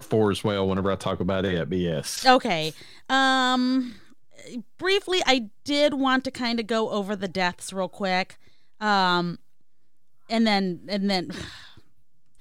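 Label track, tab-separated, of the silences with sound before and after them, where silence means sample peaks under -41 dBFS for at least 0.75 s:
9.360000	10.290000	silence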